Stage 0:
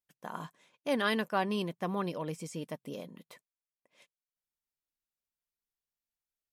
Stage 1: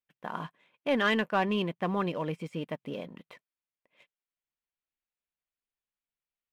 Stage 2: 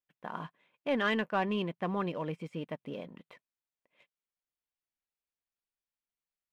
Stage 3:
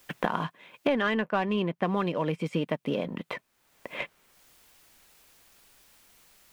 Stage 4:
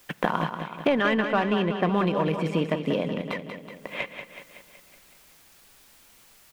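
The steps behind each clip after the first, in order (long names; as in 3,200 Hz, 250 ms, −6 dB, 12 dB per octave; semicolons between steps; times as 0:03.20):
high shelf with overshoot 4,200 Hz −14 dB, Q 1.5; leveller curve on the samples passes 1
high-shelf EQ 4,900 Hz −6 dB; level −3 dB
multiband upward and downward compressor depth 100%; level +5.5 dB
repeating echo 187 ms, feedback 57%, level −8 dB; on a send at −22 dB: convolution reverb RT60 2.9 s, pre-delay 3 ms; on the sum: level +3 dB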